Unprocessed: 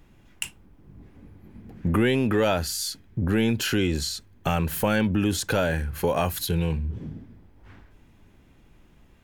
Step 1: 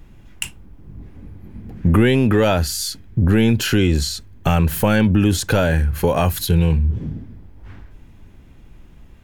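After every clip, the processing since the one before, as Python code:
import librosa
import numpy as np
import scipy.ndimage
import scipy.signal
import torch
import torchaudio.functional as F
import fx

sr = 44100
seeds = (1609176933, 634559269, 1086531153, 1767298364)

y = fx.low_shelf(x, sr, hz=140.0, db=8.5)
y = y * 10.0 ** (5.0 / 20.0)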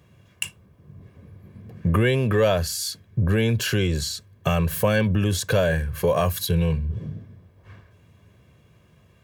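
y = scipy.signal.sosfilt(scipy.signal.butter(4, 93.0, 'highpass', fs=sr, output='sos'), x)
y = y + 0.62 * np.pad(y, (int(1.8 * sr / 1000.0), 0))[:len(y)]
y = y * 10.0 ** (-5.0 / 20.0)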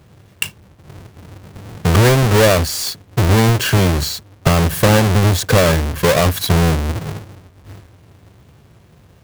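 y = fx.halfwave_hold(x, sr)
y = y * 10.0 ** (3.5 / 20.0)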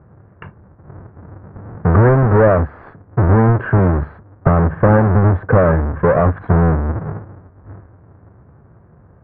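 y = scipy.signal.sosfilt(scipy.signal.butter(6, 1600.0, 'lowpass', fs=sr, output='sos'), x)
y = y * 10.0 ** (1.0 / 20.0)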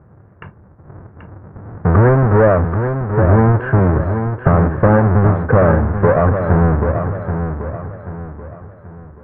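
y = fx.echo_feedback(x, sr, ms=783, feedback_pct=38, wet_db=-7.5)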